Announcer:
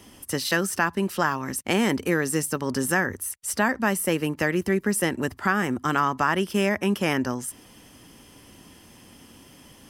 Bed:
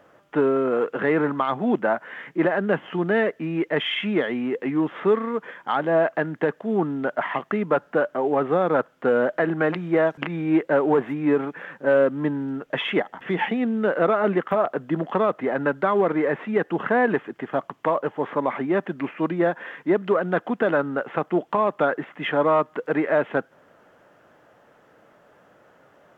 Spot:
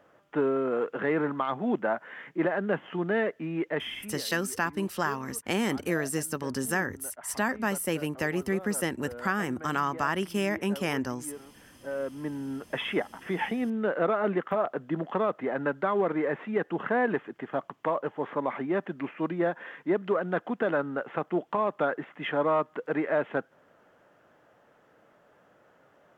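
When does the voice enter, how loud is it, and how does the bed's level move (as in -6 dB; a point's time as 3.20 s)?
3.80 s, -5.5 dB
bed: 3.71 s -6 dB
4.30 s -22 dB
11.59 s -22 dB
12.51 s -6 dB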